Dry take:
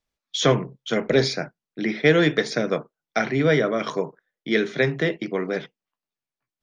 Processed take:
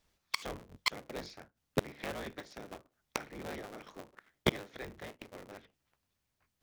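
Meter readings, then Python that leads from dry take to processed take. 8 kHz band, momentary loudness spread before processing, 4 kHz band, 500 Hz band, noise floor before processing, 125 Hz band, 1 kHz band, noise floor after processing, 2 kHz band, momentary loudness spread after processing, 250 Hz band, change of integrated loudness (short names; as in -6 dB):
-11.5 dB, 11 LU, -12.5 dB, -20.5 dB, under -85 dBFS, -18.0 dB, -13.0 dB, -83 dBFS, -16.5 dB, 18 LU, -19.5 dB, -17.0 dB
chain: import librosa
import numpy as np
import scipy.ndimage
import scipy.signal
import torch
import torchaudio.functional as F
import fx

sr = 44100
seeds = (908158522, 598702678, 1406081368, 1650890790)

y = fx.cycle_switch(x, sr, every=3, mode='inverted')
y = fx.gate_flip(y, sr, shuts_db=-23.0, range_db=-32)
y = y * 10.0 ** (8.0 / 20.0)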